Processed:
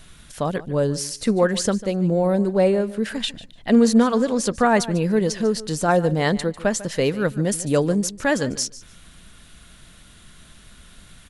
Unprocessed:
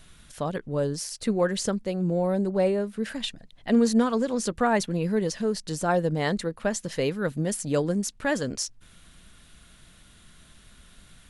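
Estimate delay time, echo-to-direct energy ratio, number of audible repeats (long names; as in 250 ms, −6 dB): 147 ms, −17.0 dB, 2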